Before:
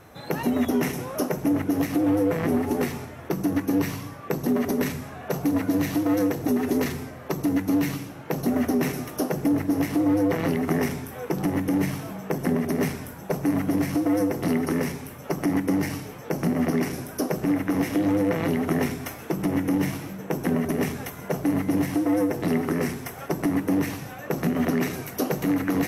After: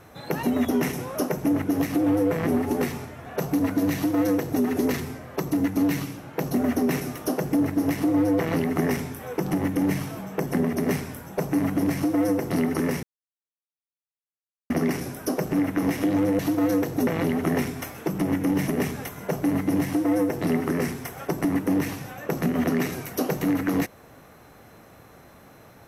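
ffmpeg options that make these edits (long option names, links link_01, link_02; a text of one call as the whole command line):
ffmpeg -i in.wav -filter_complex "[0:a]asplit=7[link_01][link_02][link_03][link_04][link_05][link_06][link_07];[link_01]atrim=end=3.262[link_08];[link_02]atrim=start=5.178:end=14.95,asetpts=PTS-STARTPTS,afade=type=out:start_time=9.768:duration=0.004:curve=hsin[link_09];[link_03]atrim=start=14.95:end=16.62,asetpts=PTS-STARTPTS,volume=0[link_10];[link_04]atrim=start=16.62:end=18.312,asetpts=PTS-STARTPTS,afade=type=in:duration=0.004:curve=hsin[link_11];[link_05]atrim=start=5.868:end=6.552[link_12];[link_06]atrim=start=18.308:end=19.922[link_13];[link_07]atrim=start=20.688[link_14];[link_09][link_10][link_11]concat=n=3:v=0:a=1[link_15];[link_08][link_15]acrossfade=duration=0.004:curve1=hsin:curve2=hsin[link_16];[link_16][link_12]acrossfade=duration=0.004:curve1=hsin:curve2=hsin[link_17];[link_17][link_13]acrossfade=duration=0.004:curve1=hsin:curve2=hsin[link_18];[link_18][link_14]acrossfade=duration=0.004:curve1=hsin:curve2=hsin" out.wav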